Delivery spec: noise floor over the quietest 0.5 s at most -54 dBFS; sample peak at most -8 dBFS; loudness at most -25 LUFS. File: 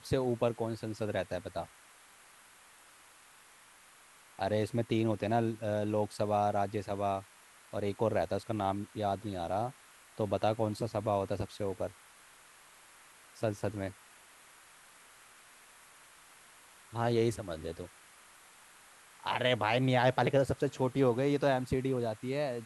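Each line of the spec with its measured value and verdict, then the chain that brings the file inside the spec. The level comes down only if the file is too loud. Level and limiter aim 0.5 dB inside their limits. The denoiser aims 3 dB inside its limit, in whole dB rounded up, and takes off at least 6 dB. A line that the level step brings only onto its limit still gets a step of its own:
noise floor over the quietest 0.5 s -59 dBFS: pass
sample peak -14.0 dBFS: pass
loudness -33.0 LUFS: pass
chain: none needed

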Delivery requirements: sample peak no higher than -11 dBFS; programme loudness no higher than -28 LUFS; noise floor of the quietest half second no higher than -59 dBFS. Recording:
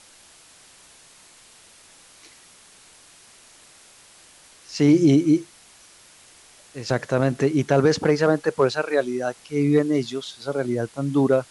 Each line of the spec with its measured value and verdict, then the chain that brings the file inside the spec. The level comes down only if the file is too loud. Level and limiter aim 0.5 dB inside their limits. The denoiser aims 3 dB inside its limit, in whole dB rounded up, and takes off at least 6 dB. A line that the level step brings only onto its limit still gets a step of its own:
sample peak -6.5 dBFS: fail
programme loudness -21.5 LUFS: fail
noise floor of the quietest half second -51 dBFS: fail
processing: noise reduction 6 dB, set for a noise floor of -51 dBFS; trim -7 dB

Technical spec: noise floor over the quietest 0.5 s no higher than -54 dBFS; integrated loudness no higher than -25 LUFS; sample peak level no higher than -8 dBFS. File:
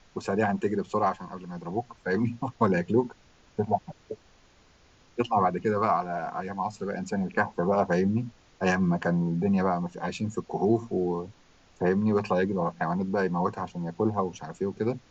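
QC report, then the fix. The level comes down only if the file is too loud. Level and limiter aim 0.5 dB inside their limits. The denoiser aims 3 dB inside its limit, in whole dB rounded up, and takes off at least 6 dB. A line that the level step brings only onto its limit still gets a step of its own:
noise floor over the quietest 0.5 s -59 dBFS: pass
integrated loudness -28.0 LUFS: pass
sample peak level -10.5 dBFS: pass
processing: none needed

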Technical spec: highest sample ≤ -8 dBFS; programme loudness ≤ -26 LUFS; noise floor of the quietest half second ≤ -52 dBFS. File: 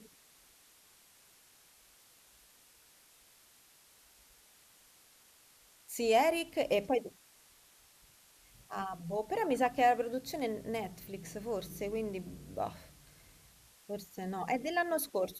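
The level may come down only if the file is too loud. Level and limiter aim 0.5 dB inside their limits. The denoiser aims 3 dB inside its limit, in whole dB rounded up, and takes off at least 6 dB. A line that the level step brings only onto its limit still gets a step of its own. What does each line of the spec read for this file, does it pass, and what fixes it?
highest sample -15.5 dBFS: pass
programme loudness -34.5 LUFS: pass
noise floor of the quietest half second -63 dBFS: pass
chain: none needed

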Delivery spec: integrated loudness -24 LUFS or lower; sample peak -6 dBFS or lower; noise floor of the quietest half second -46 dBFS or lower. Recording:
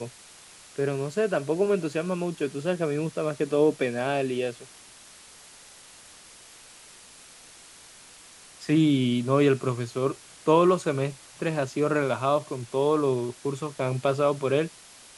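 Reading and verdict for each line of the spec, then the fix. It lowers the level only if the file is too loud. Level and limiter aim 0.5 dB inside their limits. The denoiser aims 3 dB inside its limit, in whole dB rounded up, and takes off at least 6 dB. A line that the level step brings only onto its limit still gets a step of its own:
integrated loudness -26.0 LUFS: pass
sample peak -8.5 dBFS: pass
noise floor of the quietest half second -50 dBFS: pass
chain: none needed

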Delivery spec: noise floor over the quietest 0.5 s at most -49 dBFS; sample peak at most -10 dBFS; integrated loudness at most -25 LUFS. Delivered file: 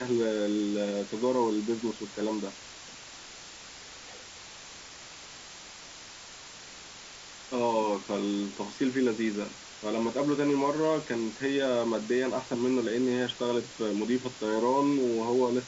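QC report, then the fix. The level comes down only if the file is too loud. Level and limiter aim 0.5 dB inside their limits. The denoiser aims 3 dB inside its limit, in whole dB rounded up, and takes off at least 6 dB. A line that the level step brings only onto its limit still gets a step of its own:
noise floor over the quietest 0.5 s -47 dBFS: fail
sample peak -15.5 dBFS: pass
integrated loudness -29.5 LUFS: pass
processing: noise reduction 6 dB, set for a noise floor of -47 dBFS

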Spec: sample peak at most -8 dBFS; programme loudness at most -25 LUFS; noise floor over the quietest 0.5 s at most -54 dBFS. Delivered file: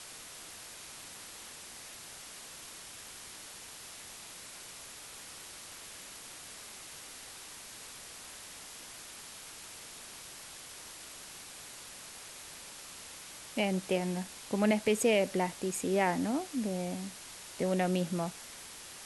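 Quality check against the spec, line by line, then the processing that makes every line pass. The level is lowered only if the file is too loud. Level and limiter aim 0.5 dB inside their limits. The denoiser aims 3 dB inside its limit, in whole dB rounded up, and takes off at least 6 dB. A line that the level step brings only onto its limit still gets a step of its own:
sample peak -15.0 dBFS: pass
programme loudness -37.0 LUFS: pass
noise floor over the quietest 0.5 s -48 dBFS: fail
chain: noise reduction 9 dB, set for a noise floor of -48 dBFS

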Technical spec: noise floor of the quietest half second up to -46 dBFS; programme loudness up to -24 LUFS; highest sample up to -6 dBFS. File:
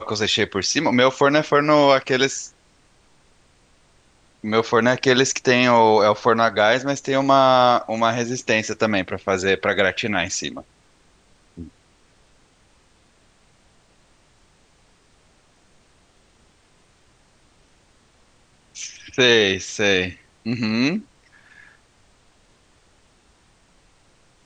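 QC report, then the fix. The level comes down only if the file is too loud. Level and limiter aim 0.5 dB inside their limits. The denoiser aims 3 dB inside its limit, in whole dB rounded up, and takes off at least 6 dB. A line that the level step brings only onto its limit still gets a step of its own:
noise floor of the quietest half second -58 dBFS: pass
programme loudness -18.5 LUFS: fail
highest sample -2.5 dBFS: fail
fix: trim -6 dB

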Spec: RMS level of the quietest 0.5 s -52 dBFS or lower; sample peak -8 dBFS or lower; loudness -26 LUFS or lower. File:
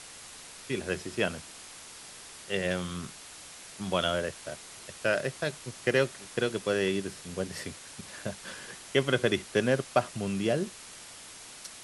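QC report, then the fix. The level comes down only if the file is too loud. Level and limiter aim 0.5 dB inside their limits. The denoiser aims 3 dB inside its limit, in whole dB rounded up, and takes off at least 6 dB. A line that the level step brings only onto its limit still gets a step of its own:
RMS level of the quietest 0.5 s -47 dBFS: fail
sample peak -9.5 dBFS: pass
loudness -31.0 LUFS: pass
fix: noise reduction 8 dB, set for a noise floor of -47 dBFS

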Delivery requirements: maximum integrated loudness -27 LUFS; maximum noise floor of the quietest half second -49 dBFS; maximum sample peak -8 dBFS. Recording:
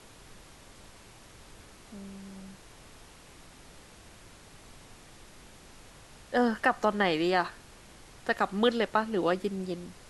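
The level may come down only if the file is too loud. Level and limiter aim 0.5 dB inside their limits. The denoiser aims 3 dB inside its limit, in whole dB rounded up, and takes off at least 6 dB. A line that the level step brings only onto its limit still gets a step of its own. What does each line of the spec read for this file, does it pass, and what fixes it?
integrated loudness -28.5 LUFS: pass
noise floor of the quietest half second -52 dBFS: pass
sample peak -9.5 dBFS: pass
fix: none needed

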